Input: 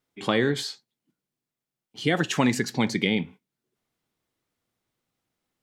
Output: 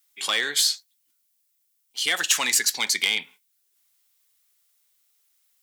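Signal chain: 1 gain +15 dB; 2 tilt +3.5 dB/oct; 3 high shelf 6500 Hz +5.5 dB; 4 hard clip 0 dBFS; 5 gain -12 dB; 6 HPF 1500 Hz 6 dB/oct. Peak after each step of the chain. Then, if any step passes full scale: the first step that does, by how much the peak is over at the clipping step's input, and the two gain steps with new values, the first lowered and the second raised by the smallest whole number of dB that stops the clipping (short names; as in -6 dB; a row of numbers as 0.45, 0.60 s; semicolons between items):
+7.5, +9.5, +10.0, 0.0, -12.0, -9.5 dBFS; step 1, 10.0 dB; step 1 +5 dB, step 5 -2 dB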